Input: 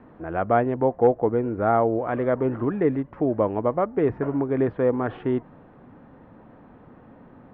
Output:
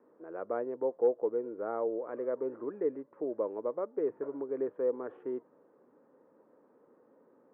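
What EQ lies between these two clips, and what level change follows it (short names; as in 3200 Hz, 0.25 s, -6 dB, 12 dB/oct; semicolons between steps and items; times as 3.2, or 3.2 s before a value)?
ladder band-pass 580 Hz, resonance 35%; bell 720 Hz -11.5 dB 0.46 oct; +1.5 dB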